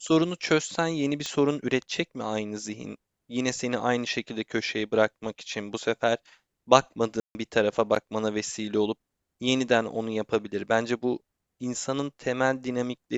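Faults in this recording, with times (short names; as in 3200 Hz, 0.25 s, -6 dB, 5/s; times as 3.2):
1.26 pop -17 dBFS
7.2–7.35 gap 0.15 s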